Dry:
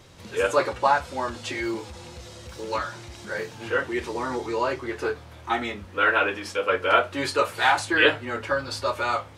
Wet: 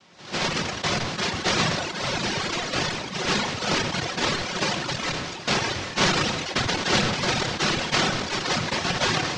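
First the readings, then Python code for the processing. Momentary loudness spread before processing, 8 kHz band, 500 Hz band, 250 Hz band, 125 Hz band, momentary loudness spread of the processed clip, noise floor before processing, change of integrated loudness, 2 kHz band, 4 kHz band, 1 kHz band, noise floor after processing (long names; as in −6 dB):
14 LU, +11.0 dB, −4.0 dB, +4.0 dB, +9.5 dB, 5 LU, −45 dBFS, +0.5 dB, −0.5 dB, +8.5 dB, −2.5 dB, −36 dBFS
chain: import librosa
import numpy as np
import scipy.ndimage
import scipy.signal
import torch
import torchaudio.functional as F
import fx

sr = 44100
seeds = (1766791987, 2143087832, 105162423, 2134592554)

p1 = fx.recorder_agc(x, sr, target_db=-8.5, rise_db_per_s=36.0, max_gain_db=30)
p2 = scipy.signal.sosfilt(scipy.signal.butter(4, 980.0, 'highpass', fs=sr, output='sos'), p1)
p3 = fx.noise_vocoder(p2, sr, seeds[0], bands=1)
p4 = (np.mod(10.0 ** (17.5 / 20.0) * p3 + 1.0, 2.0) - 1.0) / 10.0 ** (17.5 / 20.0)
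p5 = p3 + F.gain(torch.from_numpy(p4), -10.0).numpy()
p6 = scipy.signal.sosfilt(scipy.signal.butter(4, 5900.0, 'lowpass', fs=sr, output='sos'), p5)
p7 = fx.tilt_eq(p6, sr, slope=-2.0)
p8 = fx.room_shoebox(p7, sr, seeds[1], volume_m3=2000.0, walls='furnished', distance_m=0.98)
p9 = fx.dereverb_blind(p8, sr, rt60_s=1.8)
p10 = p9 + fx.echo_single(p9, sr, ms=793, db=-23.0, dry=0)
y = fx.sustainer(p10, sr, db_per_s=36.0)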